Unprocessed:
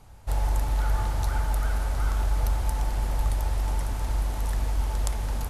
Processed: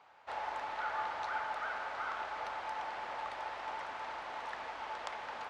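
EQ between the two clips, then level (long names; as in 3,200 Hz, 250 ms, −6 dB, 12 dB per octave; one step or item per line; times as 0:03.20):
high-pass filter 830 Hz 12 dB per octave
low-pass filter 2,700 Hz 12 dB per octave
high-frequency loss of the air 54 metres
+2.0 dB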